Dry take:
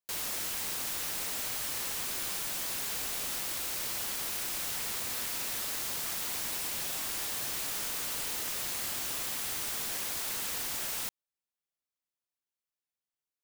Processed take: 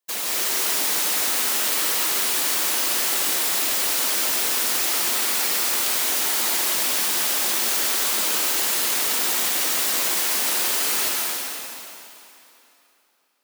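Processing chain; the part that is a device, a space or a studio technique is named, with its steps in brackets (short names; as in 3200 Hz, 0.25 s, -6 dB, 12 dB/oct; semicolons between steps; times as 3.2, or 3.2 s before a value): whispering ghost (whisperiser; HPF 220 Hz 24 dB/oct; reverb RT60 3.1 s, pre-delay 0.119 s, DRR -4 dB); gain +8 dB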